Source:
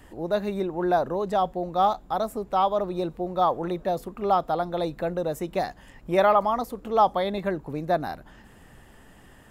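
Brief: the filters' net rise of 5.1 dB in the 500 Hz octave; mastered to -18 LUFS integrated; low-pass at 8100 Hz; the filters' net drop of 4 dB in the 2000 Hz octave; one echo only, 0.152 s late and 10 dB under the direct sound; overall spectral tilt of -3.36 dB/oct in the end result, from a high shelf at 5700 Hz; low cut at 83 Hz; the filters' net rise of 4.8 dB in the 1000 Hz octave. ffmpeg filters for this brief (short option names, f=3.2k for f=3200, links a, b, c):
-af "highpass=83,lowpass=8.1k,equalizer=f=500:t=o:g=5,equalizer=f=1k:t=o:g=6.5,equalizer=f=2k:t=o:g=-9,highshelf=f=5.7k:g=-6,aecho=1:1:152:0.316,volume=3dB"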